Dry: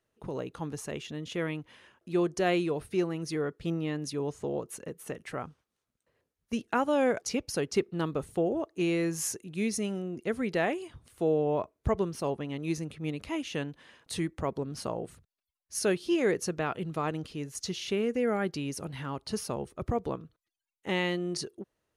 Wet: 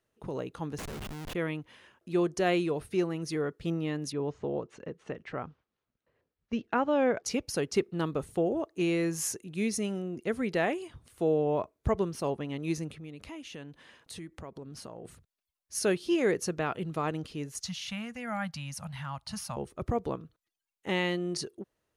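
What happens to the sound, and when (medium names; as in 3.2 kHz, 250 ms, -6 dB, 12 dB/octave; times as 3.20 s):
0.78–1.35 s: Schmitt trigger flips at -39 dBFS
4.12–7.24 s: Gaussian low-pass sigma 1.9 samples
12.95–15.05 s: compression 3:1, threshold -43 dBFS
17.60–19.57 s: Chebyshev band-stop 180–760 Hz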